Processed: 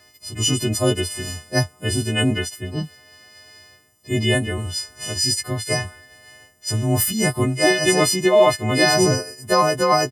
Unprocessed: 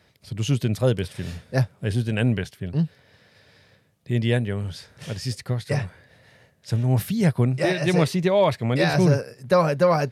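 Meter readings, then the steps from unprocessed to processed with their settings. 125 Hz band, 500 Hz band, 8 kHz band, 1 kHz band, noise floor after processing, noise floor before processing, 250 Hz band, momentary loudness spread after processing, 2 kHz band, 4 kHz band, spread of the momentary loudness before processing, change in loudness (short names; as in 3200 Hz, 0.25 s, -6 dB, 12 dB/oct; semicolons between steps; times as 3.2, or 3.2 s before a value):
-2.0 dB, +3.0 dB, +17.0 dB, +6.0 dB, -54 dBFS, -60 dBFS, +1.5 dB, 12 LU, +7.0 dB, +11.5 dB, 11 LU, +3.5 dB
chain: frequency quantiser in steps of 3 st; comb 3 ms, depth 55%; gain +2.5 dB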